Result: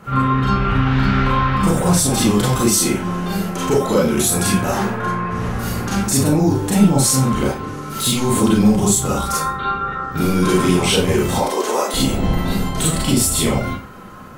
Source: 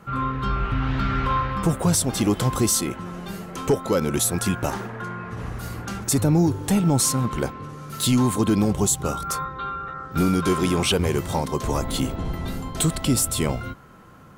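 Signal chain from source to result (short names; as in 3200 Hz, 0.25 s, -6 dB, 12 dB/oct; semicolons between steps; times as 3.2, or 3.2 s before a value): 11.38–11.94 HPF 320 Hz 24 dB/oct; limiter -17.5 dBFS, peak gain reduction 7.5 dB; Schroeder reverb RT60 0.3 s, combs from 30 ms, DRR -5 dB; gain +4.5 dB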